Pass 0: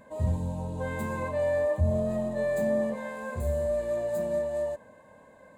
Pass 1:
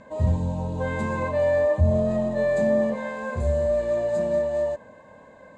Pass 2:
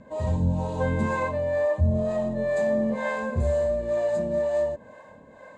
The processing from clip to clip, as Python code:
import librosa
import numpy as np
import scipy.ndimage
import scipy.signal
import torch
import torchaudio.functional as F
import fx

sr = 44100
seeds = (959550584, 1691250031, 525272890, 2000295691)

y1 = scipy.signal.sosfilt(scipy.signal.butter(4, 7000.0, 'lowpass', fs=sr, output='sos'), x)
y1 = y1 * librosa.db_to_amplitude(5.5)
y2 = fx.rider(y1, sr, range_db=10, speed_s=0.5)
y2 = fx.harmonic_tremolo(y2, sr, hz=2.1, depth_pct=70, crossover_hz=430.0)
y2 = y2 * librosa.db_to_amplitude(2.0)